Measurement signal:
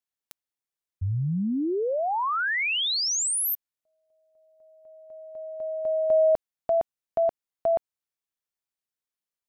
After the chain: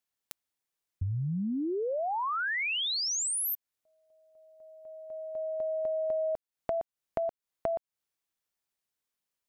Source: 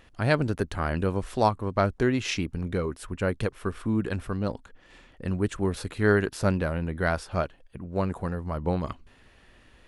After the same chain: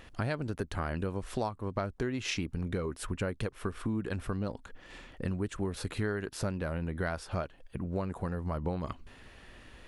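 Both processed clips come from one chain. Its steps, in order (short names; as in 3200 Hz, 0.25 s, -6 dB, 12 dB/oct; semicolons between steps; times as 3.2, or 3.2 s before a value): compressor 6:1, threshold -34 dBFS; gain +3.5 dB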